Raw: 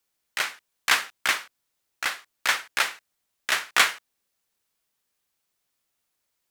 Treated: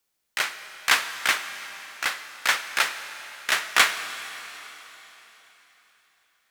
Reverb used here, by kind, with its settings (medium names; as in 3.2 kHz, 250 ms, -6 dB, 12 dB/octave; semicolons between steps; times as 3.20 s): algorithmic reverb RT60 3.9 s, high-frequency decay 1×, pre-delay 60 ms, DRR 10.5 dB; trim +1 dB